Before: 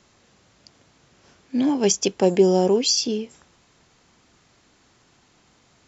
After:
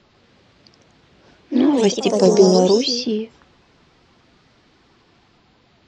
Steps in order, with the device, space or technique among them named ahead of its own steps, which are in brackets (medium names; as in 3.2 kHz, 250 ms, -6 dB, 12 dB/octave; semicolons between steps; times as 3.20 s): clip after many re-uploads (low-pass 4.5 kHz 24 dB/octave; coarse spectral quantiser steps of 15 dB); 2.12–2.59 s: resonant high shelf 4 kHz +13.5 dB, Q 3; ever faster or slower copies 145 ms, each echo +2 st, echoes 3, each echo -6 dB; trim +4 dB